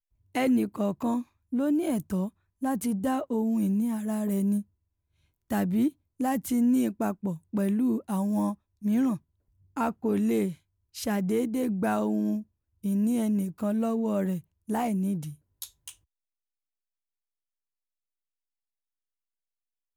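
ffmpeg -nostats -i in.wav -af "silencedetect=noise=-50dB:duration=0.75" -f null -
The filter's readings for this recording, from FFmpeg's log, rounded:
silence_start: 4.63
silence_end: 5.50 | silence_duration: 0.88
silence_start: 15.94
silence_end: 19.97 | silence_duration: 4.03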